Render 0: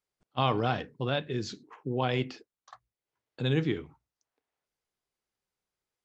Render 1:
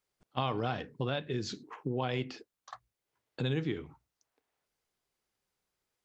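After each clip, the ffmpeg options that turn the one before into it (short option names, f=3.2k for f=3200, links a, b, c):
-af "acompressor=threshold=-37dB:ratio=2.5,volume=4dB"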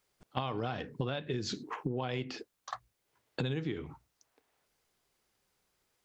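-af "acompressor=threshold=-39dB:ratio=6,volume=7.5dB"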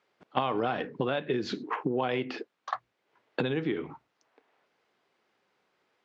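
-af "highpass=230,lowpass=2.8k,volume=8dB"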